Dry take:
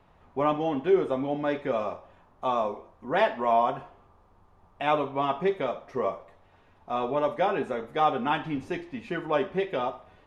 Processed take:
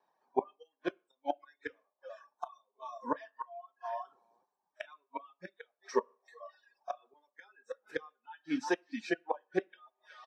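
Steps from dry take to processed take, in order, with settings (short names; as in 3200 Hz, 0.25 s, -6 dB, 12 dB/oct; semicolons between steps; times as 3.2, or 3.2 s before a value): notch 2000 Hz, Q 22; flange 1.4 Hz, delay 5.3 ms, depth 2.3 ms, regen -80%; HPF 720 Hz 12 dB/oct; on a send: feedback echo 0.364 s, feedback 25%, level -22 dB; on the sum: flipped gate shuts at -31 dBFS, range -28 dB; spectral noise reduction 21 dB; reverb RT60 0.40 s, pre-delay 3 ms, DRR 13 dB; reverse; upward compressor, threshold -55 dBFS; reverse; reverb removal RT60 1.2 s; gain +6 dB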